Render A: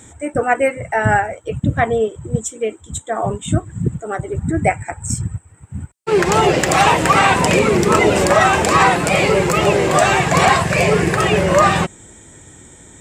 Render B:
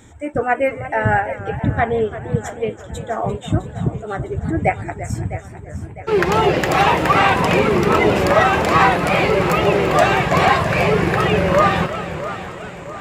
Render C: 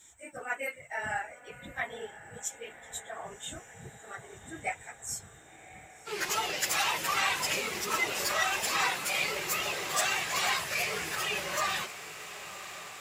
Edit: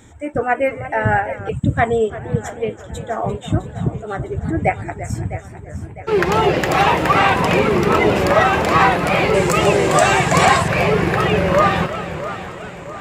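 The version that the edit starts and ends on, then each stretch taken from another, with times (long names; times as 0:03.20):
B
0:01.49–0:02.10: punch in from A
0:09.34–0:10.68: punch in from A
not used: C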